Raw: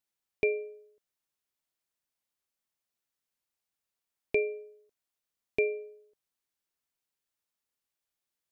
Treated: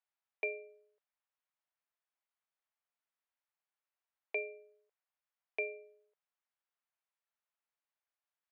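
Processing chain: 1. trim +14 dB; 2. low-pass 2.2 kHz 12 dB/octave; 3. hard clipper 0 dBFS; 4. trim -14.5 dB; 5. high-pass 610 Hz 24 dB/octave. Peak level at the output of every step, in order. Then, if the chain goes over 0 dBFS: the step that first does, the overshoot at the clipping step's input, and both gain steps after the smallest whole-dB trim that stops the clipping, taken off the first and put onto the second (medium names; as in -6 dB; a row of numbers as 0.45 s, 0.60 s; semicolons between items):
-1.5 dBFS, -2.5 dBFS, -2.5 dBFS, -17.0 dBFS, -24.0 dBFS; nothing clips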